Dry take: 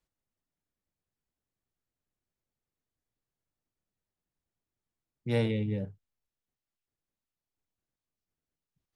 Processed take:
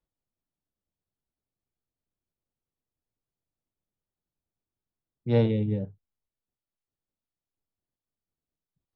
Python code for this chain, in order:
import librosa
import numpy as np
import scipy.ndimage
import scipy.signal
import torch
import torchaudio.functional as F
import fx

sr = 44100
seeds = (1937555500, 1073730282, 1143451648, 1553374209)

y = scipy.signal.sosfilt(scipy.signal.butter(4, 3900.0, 'lowpass', fs=sr, output='sos'), x)
y = fx.peak_eq(y, sr, hz=2200.0, db=-10.0, octaves=1.4)
y = fx.upward_expand(y, sr, threshold_db=-40.0, expansion=1.5)
y = y * librosa.db_to_amplitude(7.0)